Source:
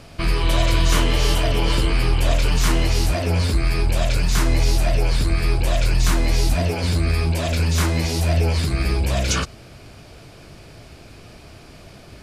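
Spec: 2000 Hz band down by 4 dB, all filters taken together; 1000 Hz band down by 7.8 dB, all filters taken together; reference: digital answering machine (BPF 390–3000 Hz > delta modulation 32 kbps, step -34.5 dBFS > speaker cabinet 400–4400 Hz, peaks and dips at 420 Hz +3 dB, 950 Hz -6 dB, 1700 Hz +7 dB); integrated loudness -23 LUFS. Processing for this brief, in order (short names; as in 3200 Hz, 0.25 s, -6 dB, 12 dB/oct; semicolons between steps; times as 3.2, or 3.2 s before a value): BPF 390–3000 Hz; bell 1000 Hz -7 dB; bell 2000 Hz -5.5 dB; delta modulation 32 kbps, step -34.5 dBFS; speaker cabinet 400–4400 Hz, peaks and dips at 420 Hz +3 dB, 950 Hz -6 dB, 1700 Hz +7 dB; gain +9.5 dB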